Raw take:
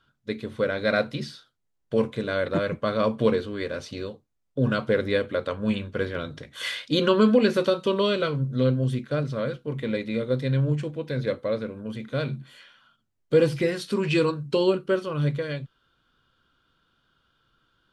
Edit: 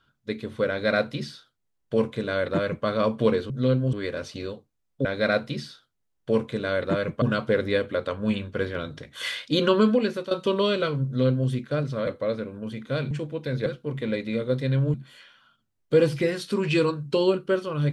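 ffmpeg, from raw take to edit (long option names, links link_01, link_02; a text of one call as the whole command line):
ffmpeg -i in.wav -filter_complex "[0:a]asplit=10[link_01][link_02][link_03][link_04][link_05][link_06][link_07][link_08][link_09][link_10];[link_01]atrim=end=3.502[link_11];[link_02]atrim=start=8.458:end=8.892[link_12];[link_03]atrim=start=3.498:end=4.622[link_13];[link_04]atrim=start=0.688:end=2.862[link_14];[link_05]atrim=start=4.618:end=7.71,asetpts=PTS-STARTPTS,afade=type=out:start_time=2.542:duration=0.55:silence=0.223872[link_15];[link_06]atrim=start=7.71:end=9.472,asetpts=PTS-STARTPTS,afade=type=in:duration=0.004:curve=hsin:silence=0.223872[link_16];[link_07]atrim=start=11.298:end=12.342[link_17];[link_08]atrim=start=10.748:end=11.302[link_18];[link_09]atrim=start=9.468:end=10.752[link_19];[link_10]atrim=start=12.338[link_20];[link_11][link_12]acrossfade=duration=0.004:curve1=hsin:curve2=hsin[link_21];[link_21][link_13]acrossfade=duration=0.004:curve1=hsin:curve2=hsin[link_22];[link_22][link_14]acrossfade=duration=0.004:curve1=hsin:curve2=hsin[link_23];[link_15][link_16]concat=n=2:v=0:a=1[link_24];[link_23][link_24]acrossfade=duration=0.004:curve1=hsin:curve2=hsin[link_25];[link_25][link_17]acrossfade=duration=0.004:curve1=hsin:curve2=hsin[link_26];[link_26][link_18]acrossfade=duration=0.004:curve1=hsin:curve2=hsin[link_27];[link_27][link_19]acrossfade=duration=0.004:curve1=hsin:curve2=hsin[link_28];[link_28][link_20]acrossfade=duration=0.004:curve1=hsin:curve2=hsin" out.wav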